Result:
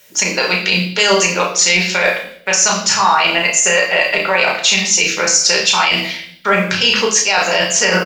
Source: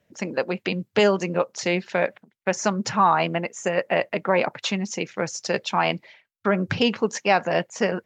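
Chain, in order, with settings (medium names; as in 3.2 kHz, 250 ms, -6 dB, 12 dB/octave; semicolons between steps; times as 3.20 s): pre-emphasis filter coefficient 0.97; band-stop 1.8 kHz, Q 28; reverse; compression 6:1, threshold -43 dBFS, peak gain reduction 14.5 dB; reverse; doubling 33 ms -6 dB; reverberation RT60 0.65 s, pre-delay 4 ms, DRR 1 dB; loudness maximiser +32 dB; trim -1 dB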